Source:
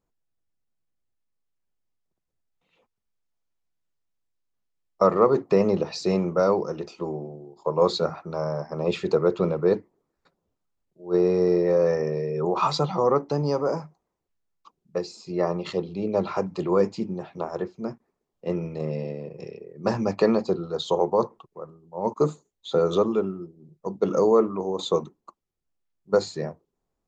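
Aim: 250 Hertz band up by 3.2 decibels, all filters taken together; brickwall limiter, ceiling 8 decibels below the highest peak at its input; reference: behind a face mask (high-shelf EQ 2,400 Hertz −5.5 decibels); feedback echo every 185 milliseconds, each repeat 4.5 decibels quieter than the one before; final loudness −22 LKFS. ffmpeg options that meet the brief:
ffmpeg -i in.wav -af "equalizer=frequency=250:width_type=o:gain=5,alimiter=limit=-14dB:level=0:latency=1,highshelf=frequency=2400:gain=-5.5,aecho=1:1:185|370|555|740|925|1110|1295|1480|1665:0.596|0.357|0.214|0.129|0.0772|0.0463|0.0278|0.0167|0.01,volume=3dB" out.wav

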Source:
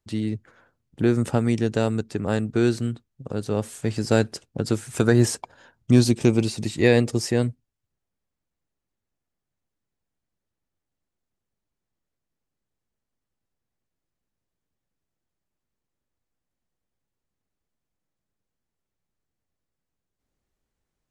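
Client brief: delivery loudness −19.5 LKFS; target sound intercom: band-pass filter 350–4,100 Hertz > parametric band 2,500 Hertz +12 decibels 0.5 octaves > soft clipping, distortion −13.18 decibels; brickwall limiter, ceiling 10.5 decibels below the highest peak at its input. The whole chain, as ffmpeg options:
ffmpeg -i in.wav -af "alimiter=limit=-14dB:level=0:latency=1,highpass=350,lowpass=4100,equalizer=frequency=2500:width_type=o:width=0.5:gain=12,asoftclip=threshold=-23dB,volume=14dB" out.wav

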